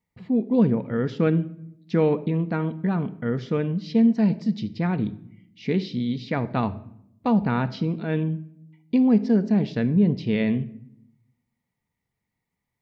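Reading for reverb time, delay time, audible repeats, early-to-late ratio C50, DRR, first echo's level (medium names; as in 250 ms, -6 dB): 0.70 s, no echo, no echo, 16.5 dB, 11.0 dB, no echo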